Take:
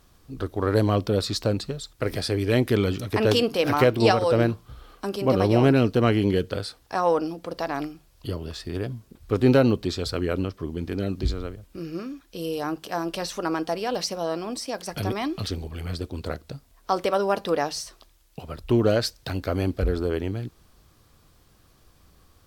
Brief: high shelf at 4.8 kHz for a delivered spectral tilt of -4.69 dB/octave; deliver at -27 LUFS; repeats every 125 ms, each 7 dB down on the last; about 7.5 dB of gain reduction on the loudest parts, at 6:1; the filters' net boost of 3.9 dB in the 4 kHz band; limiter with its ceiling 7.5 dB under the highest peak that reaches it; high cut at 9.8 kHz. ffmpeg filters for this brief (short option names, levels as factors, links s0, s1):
-af "lowpass=9800,equalizer=f=4000:t=o:g=7,highshelf=f=4800:g=-4,acompressor=threshold=0.0891:ratio=6,alimiter=limit=0.133:level=0:latency=1,aecho=1:1:125|250|375|500|625:0.447|0.201|0.0905|0.0407|0.0183,volume=1.26"